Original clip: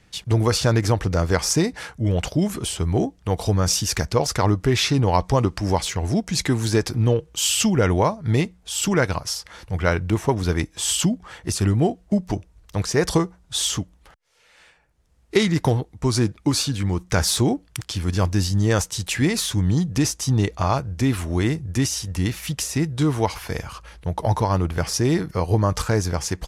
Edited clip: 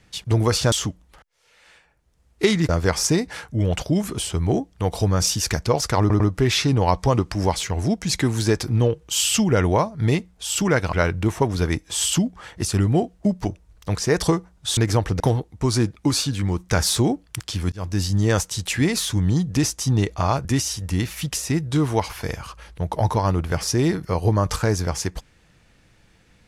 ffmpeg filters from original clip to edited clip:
-filter_complex "[0:a]asplit=10[a][b][c][d][e][f][g][h][i][j];[a]atrim=end=0.722[k];[b]atrim=start=13.638:end=15.612[l];[c]atrim=start=1.148:end=4.562[m];[d]atrim=start=4.458:end=4.562[n];[e]atrim=start=4.458:end=9.192[o];[f]atrim=start=9.798:end=13.642[p];[g]atrim=start=0.718:end=1.152[q];[h]atrim=start=15.608:end=18.13,asetpts=PTS-STARTPTS,afade=t=out:st=2.518:d=0.004:c=hsin[r];[i]atrim=start=18.13:end=20.862,asetpts=PTS-STARTPTS,afade=t=in:d=0.44:c=qsin[s];[j]atrim=start=21.708[t];[k][l]acrossfade=d=0.004:c1=hsin:c2=hsin[u];[u][m]acrossfade=d=0.004:c1=hsin:c2=hsin[v];[v][n]acrossfade=d=0.004:c1=hsin:c2=hsin[w];[w][o]acrossfade=d=0.004:c1=hsin:c2=hsin[x];[x][p]acrossfade=d=0.004:c1=hsin:c2=hsin[y];[y][q]acrossfade=d=0.004:c1=hsin:c2=hsin[z];[r][s]concat=n=2:v=0:a=1[aa];[z][aa]acrossfade=d=0.004:c1=hsin:c2=hsin[ab];[ab][t]acrossfade=d=0.004:c1=hsin:c2=hsin"

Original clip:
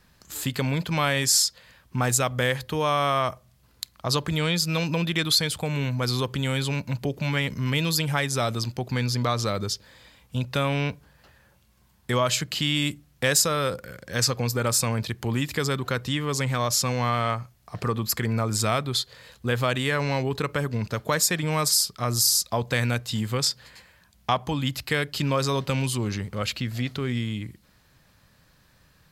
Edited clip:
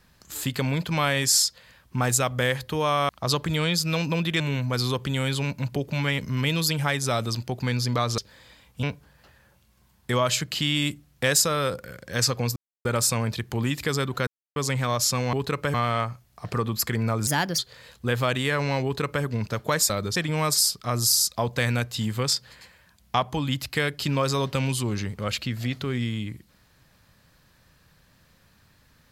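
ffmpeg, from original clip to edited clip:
-filter_complex "[0:a]asplit=14[a][b][c][d][e][f][g][h][i][j][k][l][m][n];[a]atrim=end=3.092[o];[b]atrim=start=3.908:end=5.222[p];[c]atrim=start=5.688:end=9.472[q];[d]atrim=start=9.728:end=10.382[r];[e]atrim=start=10.828:end=14.56,asetpts=PTS-STARTPTS,afade=t=out:st=3.728:d=0.004:c=hsin,apad=pad_dur=0.29[s];[f]atrim=start=14.56:end=15.98,asetpts=PTS-STARTPTS,afade=t=in:d=0.004:c=hsin,afade=t=out:st=1.416:d=0.004:c=hsin[t];[g]atrim=start=15.98:end=16.27,asetpts=PTS-STARTPTS,volume=0[u];[h]atrim=start=16.27:end=17.042,asetpts=PTS-STARTPTS,afade=t=in:d=0.004:c=hsin[v];[i]atrim=start=20.238:end=20.652[w];[j]atrim=start=17.038:end=18.574[x];[k]atrim=start=18.57:end=18.99,asetpts=PTS-STARTPTS,asetrate=58653,aresample=44100,atrim=end_sample=13926,asetpts=PTS-STARTPTS[y];[l]atrim=start=18.986:end=21.302[z];[m]atrim=start=9.468:end=9.732[aa];[n]atrim=start=21.298[ab];[o][p]acrossfade=d=0.004:c1=hsin:c2=hsin[ac];[ac][q]acrossfade=d=0.004:c1=hsin:c2=hsin[ad];[ad][r]acrossfade=d=0.004:c1=hsin:c2=hsin[ae];[s][t][u][v]concat=n=4:v=0:a=1[af];[ae][af]acrossfade=d=0.004:c1=hsin:c2=hsin[ag];[ag][w]acrossfade=d=0.004:c1=hsin:c2=hsin[ah];[ah][x]acrossfade=d=0.004:c1=hsin:c2=hsin[ai];[ai][y]acrossfade=d=0.004:c1=hsin:c2=hsin[aj];[aj][z]acrossfade=d=0.004:c1=hsin:c2=hsin[ak];[ak][aa]acrossfade=d=0.004:c1=hsin:c2=hsin[al];[al][ab]acrossfade=d=0.004:c1=hsin:c2=hsin"

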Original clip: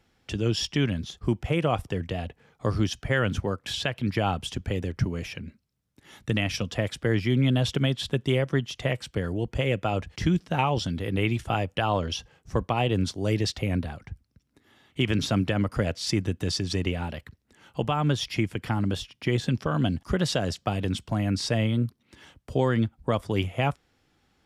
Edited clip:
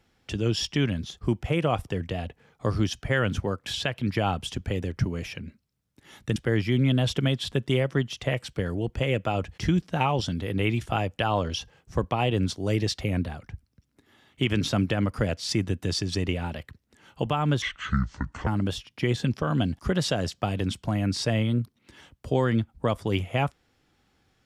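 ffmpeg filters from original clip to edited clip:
-filter_complex "[0:a]asplit=4[a][b][c][d];[a]atrim=end=6.362[e];[b]atrim=start=6.938:end=18.204[f];[c]atrim=start=18.2:end=18.71,asetpts=PTS-STARTPTS,asetrate=26460,aresample=44100[g];[d]atrim=start=18.706[h];[e][f]acrossfade=d=0.004:c1=hsin:c2=hsin[i];[i][g]acrossfade=d=0.004:c1=hsin:c2=hsin[j];[j][h]acrossfade=d=0.004:c1=hsin:c2=hsin"

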